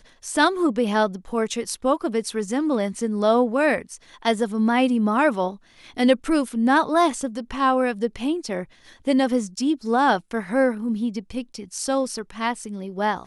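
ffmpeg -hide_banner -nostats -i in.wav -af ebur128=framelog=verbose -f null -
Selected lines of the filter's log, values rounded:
Integrated loudness:
  I:         -22.6 LUFS
  Threshold: -32.8 LUFS
Loudness range:
  LRA:         2.7 LU
  Threshold: -42.5 LUFS
  LRA low:   -23.9 LUFS
  LRA high:  -21.2 LUFS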